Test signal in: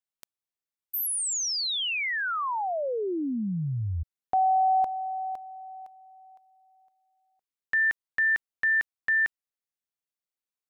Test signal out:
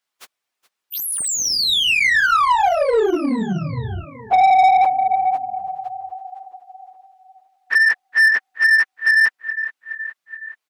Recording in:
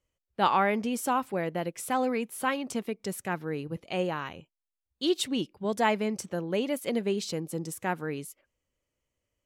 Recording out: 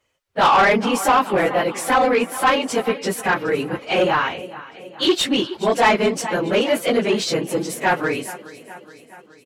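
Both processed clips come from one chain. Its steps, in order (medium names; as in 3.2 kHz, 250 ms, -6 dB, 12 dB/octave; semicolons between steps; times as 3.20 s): phase randomisation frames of 50 ms; feedback delay 421 ms, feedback 58%, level -19 dB; overdrive pedal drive 20 dB, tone 3.1 kHz, clips at -10.5 dBFS; trim +4.5 dB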